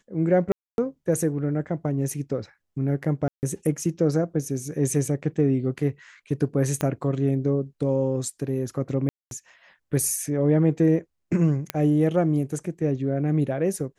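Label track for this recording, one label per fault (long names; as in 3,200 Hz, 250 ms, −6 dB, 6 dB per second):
0.520000	0.780000	drop-out 261 ms
3.280000	3.430000	drop-out 149 ms
6.810000	6.810000	click −12 dBFS
9.090000	9.310000	drop-out 222 ms
11.700000	11.700000	click −10 dBFS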